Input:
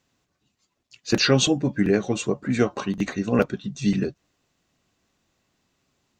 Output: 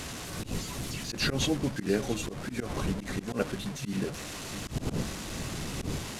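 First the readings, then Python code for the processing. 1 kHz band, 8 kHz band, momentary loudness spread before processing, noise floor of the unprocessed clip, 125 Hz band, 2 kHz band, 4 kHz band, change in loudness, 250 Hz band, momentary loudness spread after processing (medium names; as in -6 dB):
-6.0 dB, -4.0 dB, 8 LU, -75 dBFS, -5.5 dB, -6.0 dB, -6.5 dB, -10.0 dB, -8.5 dB, 7 LU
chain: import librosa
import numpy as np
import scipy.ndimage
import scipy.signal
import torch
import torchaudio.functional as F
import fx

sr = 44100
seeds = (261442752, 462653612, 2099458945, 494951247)

y = fx.delta_mod(x, sr, bps=64000, step_db=-26.5)
y = fx.dmg_wind(y, sr, seeds[0], corner_hz=220.0, level_db=-29.0)
y = y + 10.0 ** (-16.5 / 20.0) * np.pad(y, (int(682 * sr / 1000.0), 0))[:len(y)]
y = fx.auto_swell(y, sr, attack_ms=101.0)
y = F.gain(torch.from_numpy(y), -7.0).numpy()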